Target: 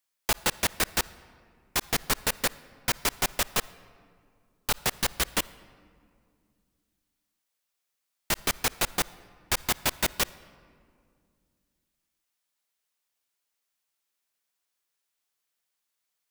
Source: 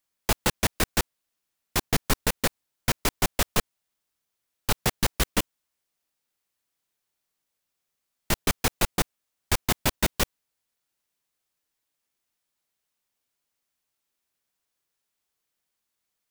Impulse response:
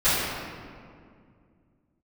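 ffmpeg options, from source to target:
-filter_complex "[0:a]lowshelf=f=420:g=-9.5,asplit=2[a][b];[1:a]atrim=start_sample=2205,adelay=50[c];[b][c]afir=irnorm=-1:irlink=0,volume=-37.5dB[d];[a][d]amix=inputs=2:normalize=0"

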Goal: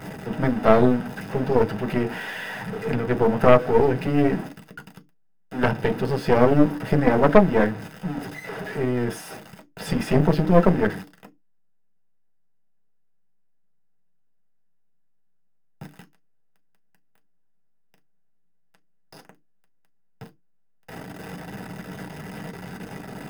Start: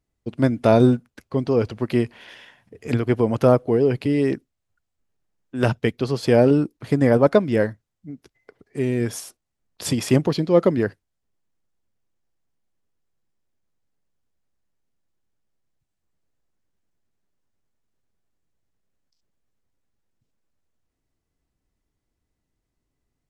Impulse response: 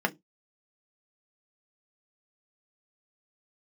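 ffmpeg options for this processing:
-filter_complex "[0:a]aeval=exprs='val(0)+0.5*0.0631*sgn(val(0))':c=same[a];[1:a]atrim=start_sample=2205,asetrate=41895,aresample=44100[b];[a][b]afir=irnorm=-1:irlink=0,aeval=exprs='3.16*(cos(1*acos(clip(val(0)/3.16,-1,1)))-cos(1*PI/2))+0.891*(cos(4*acos(clip(val(0)/3.16,-1,1)))-cos(4*PI/2))':c=same,volume=-13.5dB"

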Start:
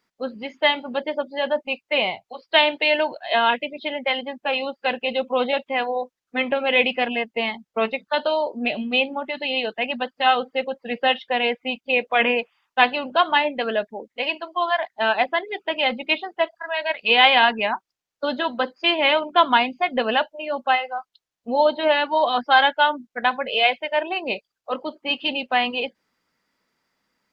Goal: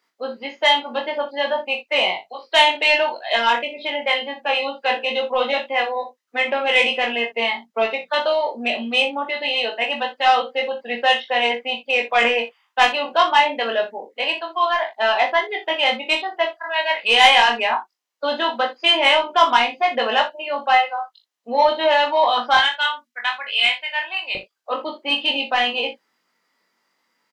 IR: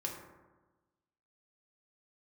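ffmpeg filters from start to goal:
-filter_complex "[0:a]asetnsamples=n=441:p=0,asendcmd='22.57 highpass f 1500;24.35 highpass f 300',highpass=370,asoftclip=type=tanh:threshold=-8.5dB,asplit=2[a][b];[b]adelay=21,volume=-4.5dB[c];[a][c]amix=inputs=2:normalize=0,aecho=1:1:22|60:0.596|0.266,volume=1.5dB"

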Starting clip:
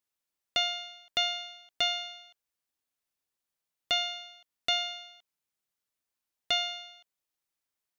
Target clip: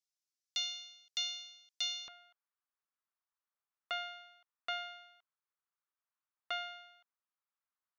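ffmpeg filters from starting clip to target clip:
-af "asetnsamples=n=441:p=0,asendcmd='2.08 bandpass f 1200',bandpass=f=5.6k:t=q:w=2.3:csg=0,volume=1dB"

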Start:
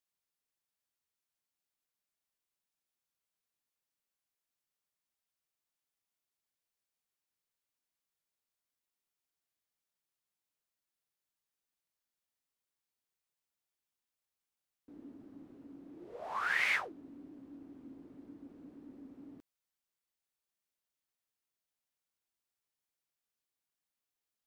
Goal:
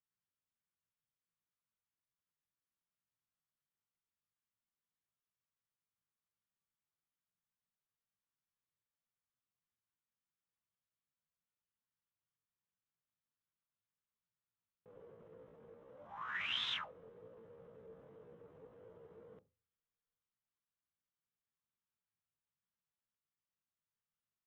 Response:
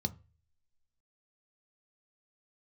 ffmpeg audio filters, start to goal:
-filter_complex "[0:a]lowpass=1.6k,asetrate=74167,aresample=44100,atempo=0.594604,asplit=2[a][b];[1:a]atrim=start_sample=2205[c];[b][c]afir=irnorm=-1:irlink=0,volume=-9.5dB[d];[a][d]amix=inputs=2:normalize=0,volume=-1dB"

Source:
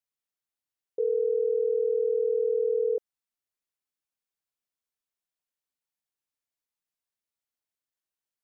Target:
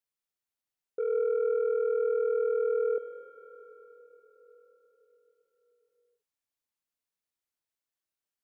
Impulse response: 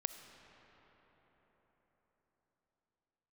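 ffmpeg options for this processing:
-filter_complex "[0:a]asoftclip=type=tanh:threshold=-23dB[a];[1:a]atrim=start_sample=2205[b];[a][b]afir=irnorm=-1:irlink=0"

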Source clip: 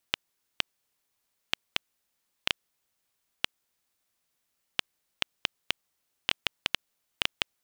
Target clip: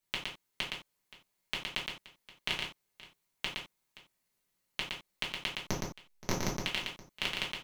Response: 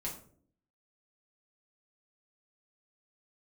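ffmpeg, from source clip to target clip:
-filter_complex "[0:a]asettb=1/sr,asplit=3[a][b][c];[a]atrim=end=5.594[d];[b]atrim=start=5.59:end=6.56,asetpts=PTS-STARTPTS,afade=t=in:d=0.004:c=qsin,afade=t=out:st=0.966:d=0.004:c=qsin,aeval=exprs='abs(val(0))':c=same[e];[c]atrim=start=6.556[f];[d][e]acrossfade=d=0.004:c1=hsin:c2=qsin[g];[g][f]acrossfade=d=0.004:c1=qsin:c2=hsin,aecho=1:1:116|524:0.631|0.112[h];[1:a]atrim=start_sample=2205,atrim=end_sample=4410[i];[h][i]afir=irnorm=-1:irlink=0,volume=-3dB"

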